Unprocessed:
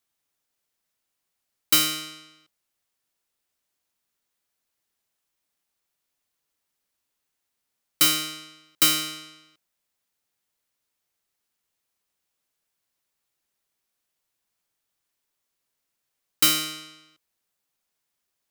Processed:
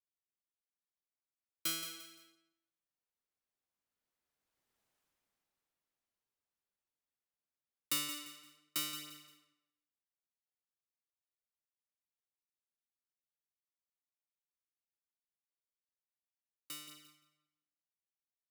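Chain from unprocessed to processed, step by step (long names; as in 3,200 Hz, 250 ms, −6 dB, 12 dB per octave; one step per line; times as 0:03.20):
source passing by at 0:04.89, 15 m/s, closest 5.2 metres
pitch vibrato 0.6 Hz 24 cents
on a send: repeating echo 173 ms, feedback 32%, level −11 dB
on the sum: one half of a high-frequency compander decoder only
level +2.5 dB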